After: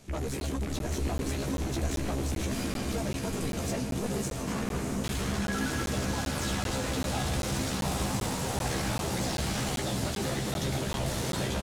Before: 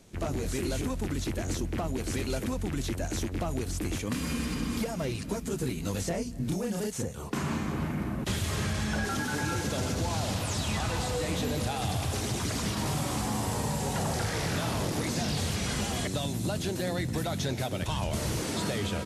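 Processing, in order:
soft clipping −32 dBFS, distortion −10 dB
time stretch by overlap-add 0.61×, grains 27 ms
double-tracking delay 15 ms −5 dB
feedback delay with all-pass diffusion 675 ms, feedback 64%, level −4 dB
regular buffer underruns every 0.39 s, samples 512, zero, from 0:00.40
level +2.5 dB

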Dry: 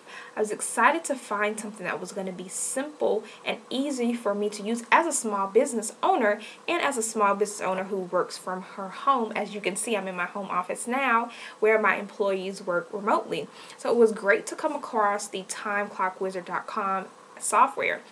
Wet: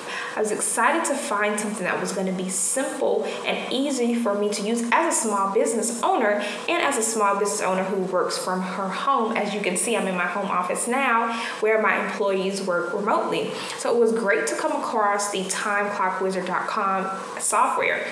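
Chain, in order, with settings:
mains-hum notches 50/100/150/200/250/300/350/400/450 Hz
reverb whose tail is shaped and stops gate 290 ms falling, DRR 8 dB
envelope flattener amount 50%
level −2.5 dB

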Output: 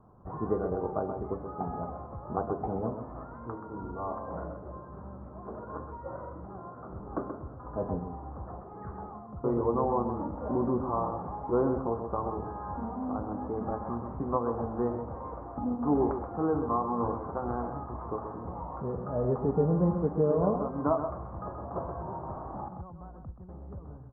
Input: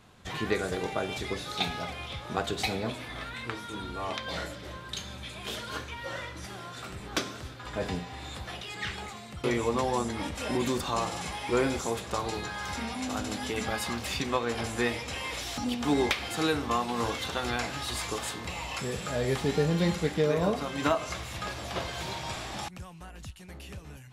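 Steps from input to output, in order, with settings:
Butterworth low-pass 1,200 Hz 48 dB per octave
on a send: single-tap delay 129 ms −8 dB

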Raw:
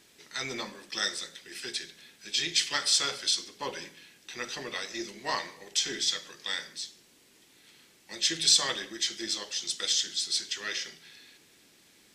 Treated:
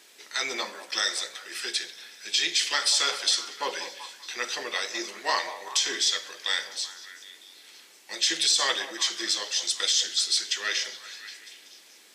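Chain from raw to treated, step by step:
high-pass filter 450 Hz 12 dB per octave
brickwall limiter −18.5 dBFS, peak gain reduction 10 dB
on a send: echo through a band-pass that steps 191 ms, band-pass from 660 Hz, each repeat 0.7 octaves, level −9 dB
on the sum: level +6 dB

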